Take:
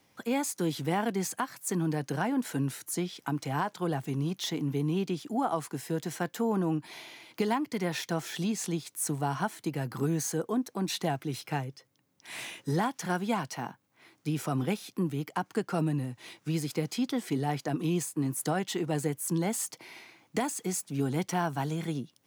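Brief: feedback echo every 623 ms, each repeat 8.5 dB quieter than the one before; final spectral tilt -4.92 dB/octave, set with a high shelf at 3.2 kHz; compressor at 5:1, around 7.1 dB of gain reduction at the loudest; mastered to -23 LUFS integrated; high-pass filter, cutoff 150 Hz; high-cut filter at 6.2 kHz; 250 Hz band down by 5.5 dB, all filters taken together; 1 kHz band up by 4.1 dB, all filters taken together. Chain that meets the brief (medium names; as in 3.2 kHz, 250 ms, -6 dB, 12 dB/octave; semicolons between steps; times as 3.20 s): high-pass 150 Hz; low-pass 6.2 kHz; peaking EQ 250 Hz -7 dB; peaking EQ 1 kHz +6.5 dB; treble shelf 3.2 kHz -7.5 dB; compression 5:1, threshold -30 dBFS; feedback delay 623 ms, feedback 38%, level -8.5 dB; trim +14 dB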